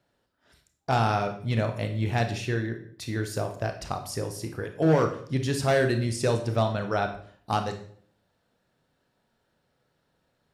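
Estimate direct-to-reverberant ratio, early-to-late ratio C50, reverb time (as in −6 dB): 5.5 dB, 9.5 dB, 0.55 s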